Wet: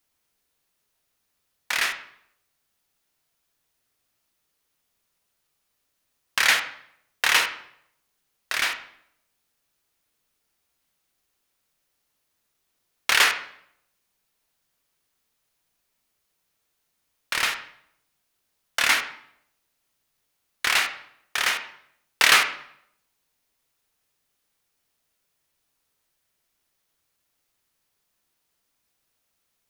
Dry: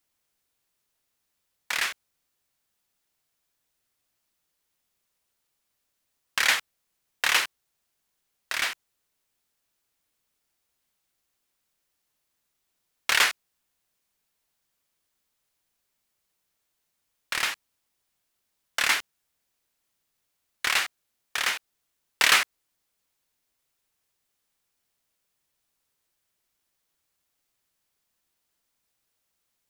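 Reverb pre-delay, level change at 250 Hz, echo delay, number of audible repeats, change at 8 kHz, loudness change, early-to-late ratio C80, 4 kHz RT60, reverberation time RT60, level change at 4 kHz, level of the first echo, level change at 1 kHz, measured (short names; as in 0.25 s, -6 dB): 12 ms, +3.5 dB, none, none, +2.0 dB, +3.0 dB, 13.5 dB, 0.55 s, 0.70 s, +3.0 dB, none, +3.5 dB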